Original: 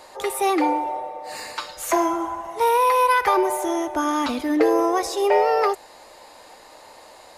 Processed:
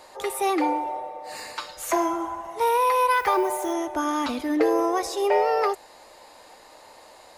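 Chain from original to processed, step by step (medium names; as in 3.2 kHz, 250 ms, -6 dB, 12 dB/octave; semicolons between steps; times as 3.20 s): 3.12–3.72 s: added noise violet -49 dBFS; trim -3 dB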